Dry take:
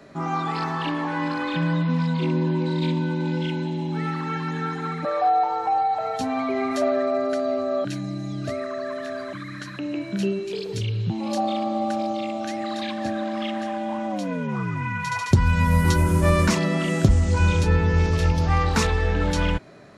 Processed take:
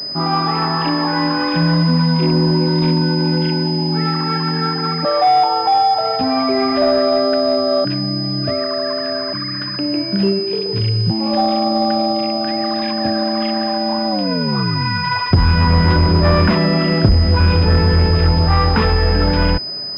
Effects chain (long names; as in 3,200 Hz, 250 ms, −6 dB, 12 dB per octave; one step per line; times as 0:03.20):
in parallel at −3.5 dB: wave folding −18 dBFS
on the sum: switching amplifier with a slow clock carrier 5,000 Hz
level +4 dB